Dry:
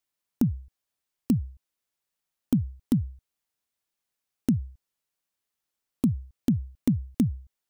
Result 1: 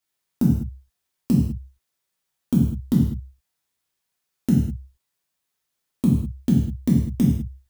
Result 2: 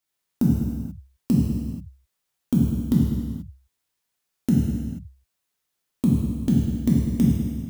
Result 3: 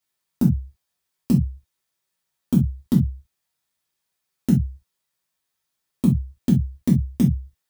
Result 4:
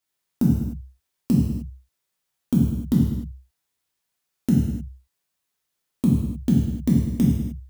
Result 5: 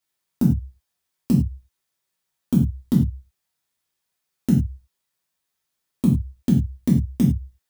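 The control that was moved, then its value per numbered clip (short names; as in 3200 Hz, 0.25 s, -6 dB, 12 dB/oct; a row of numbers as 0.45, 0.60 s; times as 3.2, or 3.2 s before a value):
non-linear reverb, gate: 230, 510, 90, 330, 130 ms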